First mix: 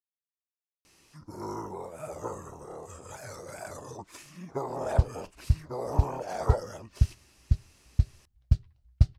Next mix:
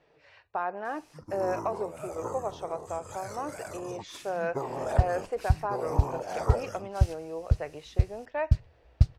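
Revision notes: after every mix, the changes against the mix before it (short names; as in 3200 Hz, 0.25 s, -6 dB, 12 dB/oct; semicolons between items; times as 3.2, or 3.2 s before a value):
speech: unmuted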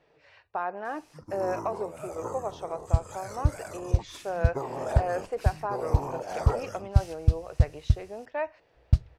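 second sound: entry -2.05 s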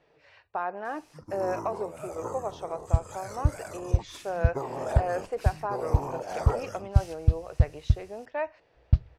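second sound: add air absorption 200 m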